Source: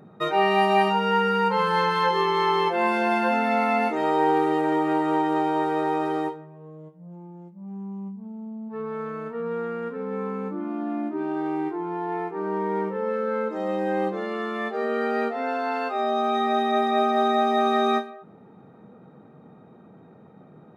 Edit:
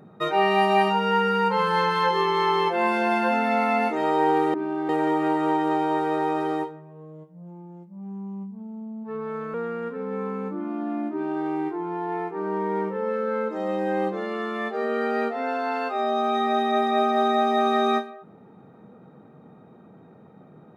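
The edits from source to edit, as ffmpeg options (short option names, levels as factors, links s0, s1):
-filter_complex "[0:a]asplit=4[s0][s1][s2][s3];[s0]atrim=end=4.542[s4];[s1]atrim=start=11.128:end=11.482[s5];[s2]atrim=start=4.538:end=9.192[s6];[s3]atrim=start=9.538[s7];[s4][s5]acrossfade=d=0.004:c1=hsin:c2=hsin[s8];[s8][s6]acrossfade=d=0.004:c1=hsin:c2=hsin[s9];[s9][s7]acrossfade=d=0.004:c1=hsin:c2=hsin"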